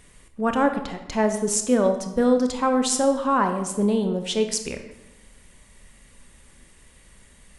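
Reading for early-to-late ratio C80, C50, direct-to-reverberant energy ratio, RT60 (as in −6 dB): 11.0 dB, 8.5 dB, 6.5 dB, 1.0 s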